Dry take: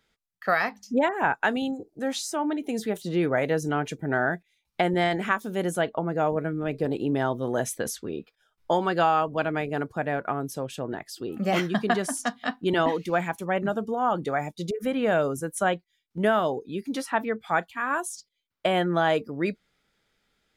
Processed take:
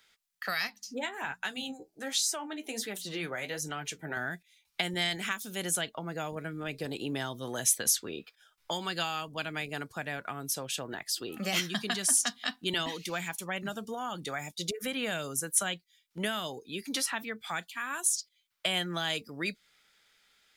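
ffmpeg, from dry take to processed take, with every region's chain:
-filter_complex "[0:a]asettb=1/sr,asplit=3[a][b][c];[a]atrim=end=0.674[d];[b]atrim=start=0.67:end=4.17,asetpts=PTS-STARTPTS,afade=t=in:d=0.004:c=qsin,afade=t=out:st=3.496:d=0.004:c=qsin,bandreject=f=60:t=h:w=6,bandreject=f=120:t=h:w=6,bandreject=f=180:t=h:w=6,bandreject=f=240:t=h:w=6,flanger=delay=5.2:depth=8:regen=45:speed=1.3:shape=sinusoidal[e];[c]atrim=start=4.166[f];[d][e]acrossfade=d=0.004:c1=hsin:c2=qsin[g];[g][f]acrossfade=d=0.004:c1=qsin:c2=hsin,tiltshelf=f=760:g=-9,acrossover=split=260|3000[h][i][j];[i]acompressor=threshold=-38dB:ratio=4[k];[h][k][j]amix=inputs=3:normalize=0"

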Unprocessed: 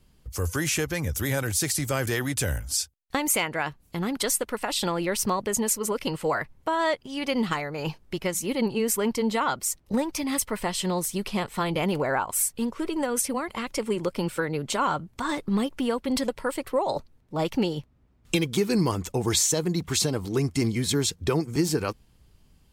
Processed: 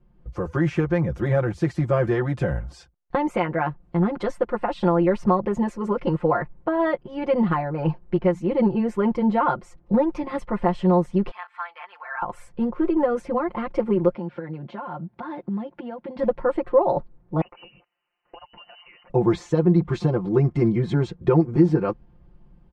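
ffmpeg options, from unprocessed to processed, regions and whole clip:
-filter_complex "[0:a]asettb=1/sr,asplit=3[a][b][c];[a]atrim=end=11.314[d];[b]atrim=start=11.31:end=12.22,asetpts=PTS-STARTPTS,afade=t=in:d=0.004:c=qsin,afade=t=out:st=0.906:d=0.004:c=qsin,highpass=f=1.3k:w=0.5412,highpass=f=1.3k:w=1.3066,highshelf=f=3.1k:g=-10,aecho=1:1:4.5:0.47,atrim=end_sample=40131[e];[c]atrim=start=12.216[f];[d][e]acrossfade=d=0.004:c1=hsin:c2=qsin[g];[g][f]acrossfade=d=0.004:c1=qsin:c2=hsin,asettb=1/sr,asplit=3[h][i][j];[h]atrim=end=14.144[k];[i]atrim=start=14.14:end=16.19,asetpts=PTS-STARTPTS,afade=t=in:d=0.004:c=qsin,afade=t=out:st=2.046:d=0.004:c=qsin,acompressor=threshold=-31dB:ratio=6:attack=3.2:release=140:knee=1:detection=peak,highpass=160,equalizer=f=310:t=q:w=4:g=-3,equalizer=f=450:t=q:w=4:g=-7,equalizer=f=1.2k:t=q:w=4:g=-7,lowpass=f=5k:w=0.5412,lowpass=f=5k:w=1.3066[l];[j]atrim=start=16.186[m];[k][l]acrossfade=d=0.004:c1=hsin:c2=qsin[n];[n][m]acrossfade=d=0.004:c1=qsin:c2=hsin,asettb=1/sr,asplit=3[o][p][q];[o]atrim=end=17.414[r];[p]atrim=start=17.41:end=19.1,asetpts=PTS-STARTPTS,afade=t=in:d=0.004:c=qsin,afade=t=out:st=1.686:d=0.004:c=qsin,highpass=f=280:w=0.5412,highpass=f=280:w=1.3066,acompressor=threshold=-39dB:ratio=5:attack=3.2:release=140:knee=1:detection=peak,lowpass=f=2.7k:t=q:w=0.5098,lowpass=f=2.7k:t=q:w=0.6013,lowpass=f=2.7k:t=q:w=0.9,lowpass=f=2.7k:t=q:w=2.563,afreqshift=-3200[s];[q]atrim=start=19.096[t];[r][s]acrossfade=d=0.004:c1=hsin:c2=qsin[u];[u][t]acrossfade=d=0.004:c1=qsin:c2=hsin,lowpass=1.1k,aecho=1:1:5.7:0.98,dynaudnorm=f=140:g=3:m=5.5dB,volume=-1.5dB"

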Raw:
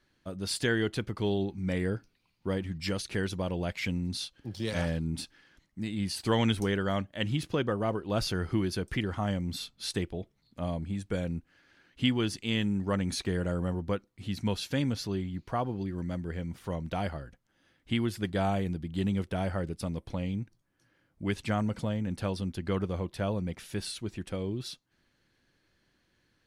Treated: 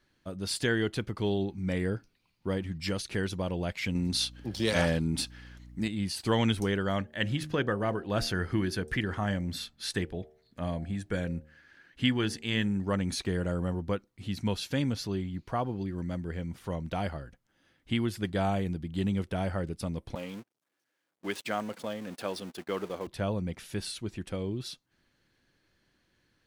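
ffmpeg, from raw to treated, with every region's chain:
-filter_complex "[0:a]asettb=1/sr,asplit=3[a][b][c];[a]atrim=end=3.954[d];[b]atrim=start=3.95:end=5.88,asetpts=PTS-STARTPTS,afade=t=in:d=0.004:c=qsin,afade=t=out:st=1.926:d=0.004:c=qsin,lowshelf=f=160:g=-9.5,aeval=exprs='val(0)+0.00178*(sin(2*PI*60*n/s)+sin(2*PI*2*60*n/s)/2+sin(2*PI*3*60*n/s)/3+sin(2*PI*4*60*n/s)/4+sin(2*PI*5*60*n/s)/5)':c=same,acontrast=87[e];[c]atrim=start=5.876[f];[d][e]acrossfade=d=0.004:c1=hsin:c2=qsin[g];[g][f]acrossfade=d=0.004:c1=qsin:c2=hsin,asettb=1/sr,asplit=3[h][i][j];[h]atrim=end=6.984[k];[i]atrim=start=6.98:end=12.77,asetpts=PTS-STARTPTS,afade=t=in:d=0.004:c=qsin,afade=t=out:st=5.786:d=0.004:c=qsin,equalizer=f=1.7k:w=3.6:g=8,bandreject=f=76.07:t=h:w=4,bandreject=f=152.14:t=h:w=4,bandreject=f=228.21:t=h:w=4,bandreject=f=304.28:t=h:w=4,bandreject=f=380.35:t=h:w=4,bandreject=f=456.42:t=h:w=4,bandreject=f=532.49:t=h:w=4,bandreject=f=608.56:t=h:w=4,bandreject=f=684.63:t=h:w=4,bandreject=f=760.7:t=h:w=4,bandreject=f=836.77:t=h:w=4[l];[j]atrim=start=12.766[m];[k][l]acrossfade=d=0.004:c1=hsin:c2=qsin[n];[n][m]acrossfade=d=0.004:c1=qsin:c2=hsin,asettb=1/sr,asplit=3[o][p][q];[o]atrim=end=20.154[r];[p]atrim=start=20.15:end=23.07,asetpts=PTS-STARTPTS,afade=t=in:d=0.004:c=qsin,afade=t=out:st=2.916:d=0.004:c=qsin,aeval=exprs='val(0)+0.5*0.00944*sgn(val(0))':c=same,highpass=330,agate=range=-34dB:threshold=-43dB:ratio=16:release=100:detection=peak[s];[q]atrim=start=23.066[t];[r][s]acrossfade=d=0.004:c1=hsin:c2=qsin[u];[u][t]acrossfade=d=0.004:c1=qsin:c2=hsin"

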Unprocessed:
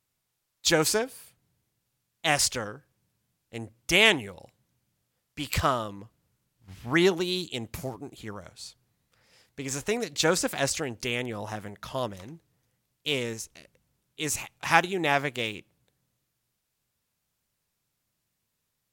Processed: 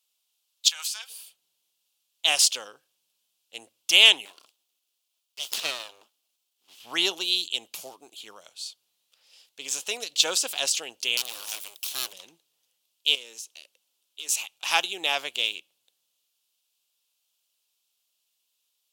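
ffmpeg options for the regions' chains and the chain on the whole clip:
-filter_complex "[0:a]asettb=1/sr,asplit=3[a][b][c];[a]atrim=end=0.684[d];[b]atrim=start=0.68:end=1.1,asetpts=PTS-STARTPTS,afade=t=in:d=0.004:c=qsin,afade=t=out:st=0.416:d=0.004:c=qsin,highpass=f=1.1k:w=0.5412,highpass=f=1.1k:w=1.3066,acompressor=threshold=-31dB:ratio=10:attack=3.2:release=140:knee=1:detection=peak[e];[c]atrim=start=1.096[f];[d][e]acrossfade=d=0.004:c1=hsin:c2=qsin[g];[g][f]acrossfade=d=0.004:c1=qsin:c2=hsin,asettb=1/sr,asplit=3[h][i][j];[h]atrim=end=4.254[k];[i]atrim=start=4.25:end=6.8,asetpts=PTS-STARTPTS,afade=t=in:d=0.004:c=qsin,afade=t=out:st=2.546:d=0.004:c=qsin,highpass=f=150:p=1,aeval=exprs='abs(val(0))':c=same[l];[j]atrim=start=6.796[m];[k][l]acrossfade=d=0.004:c1=hsin:c2=qsin[n];[n][m]acrossfade=d=0.004:c1=qsin:c2=hsin,asettb=1/sr,asplit=3[o][p][q];[o]atrim=end=11.174[r];[p]atrim=start=11.17:end=12.13,asetpts=PTS-STARTPTS,afade=t=in:d=0.004:c=qsin,afade=t=out:st=0.956:d=0.004:c=qsin,aeval=exprs='abs(val(0))':c=same,aemphasis=mode=production:type=75fm[s];[q]atrim=start=12.126[t];[r][s]acrossfade=d=0.004:c1=hsin:c2=qsin[u];[u][t]acrossfade=d=0.004:c1=qsin:c2=hsin,asettb=1/sr,asplit=3[v][w][x];[v]atrim=end=13.154[y];[w]atrim=start=13.15:end=14.29,asetpts=PTS-STARTPTS,afade=t=in:d=0.004:c=qsin,afade=t=out:st=1.136:d=0.004:c=qsin,highpass=f=210:w=0.5412,highpass=f=210:w=1.3066,acompressor=threshold=-40dB:ratio=3:attack=3.2:release=140:knee=1:detection=peak,volume=33.5dB,asoftclip=hard,volume=-33.5dB[z];[x]atrim=start=14.286[aa];[y][z]acrossfade=d=0.004:c1=hsin:c2=qsin[ab];[ab][aa]acrossfade=d=0.004:c1=qsin:c2=hsin,highpass=590,highshelf=f=2.4k:t=q:w=3:g=7,volume=-3dB"

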